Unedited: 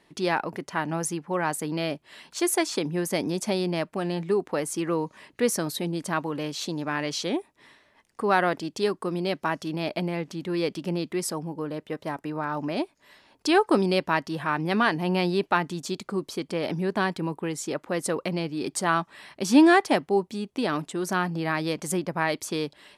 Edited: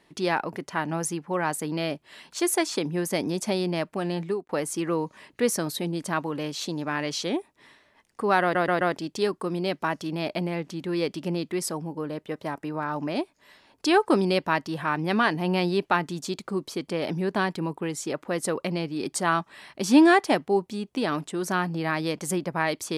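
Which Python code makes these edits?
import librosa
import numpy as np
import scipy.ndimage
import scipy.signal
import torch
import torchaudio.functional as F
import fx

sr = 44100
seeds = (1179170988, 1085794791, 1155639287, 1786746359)

y = fx.edit(x, sr, fx.fade_out_span(start_s=4.24, length_s=0.25),
    fx.stutter(start_s=8.42, slice_s=0.13, count=4), tone=tone)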